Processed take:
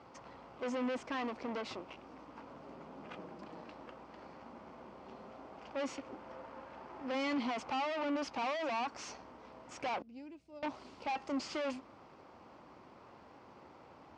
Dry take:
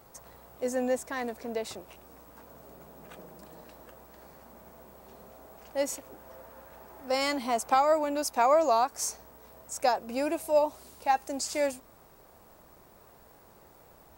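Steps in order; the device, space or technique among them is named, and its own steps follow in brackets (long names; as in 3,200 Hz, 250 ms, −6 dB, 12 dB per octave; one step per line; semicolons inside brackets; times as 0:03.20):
0:10.02–0:10.63: guitar amp tone stack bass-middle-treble 10-0-1
guitar amplifier (tube saturation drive 39 dB, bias 0.7; bass and treble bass −3 dB, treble +3 dB; loudspeaker in its box 100–4,100 Hz, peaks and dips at 160 Hz −3 dB, 270 Hz +4 dB, 440 Hz −5 dB, 660 Hz −5 dB, 1,700 Hz −6 dB, 3,800 Hz −8 dB)
level +7 dB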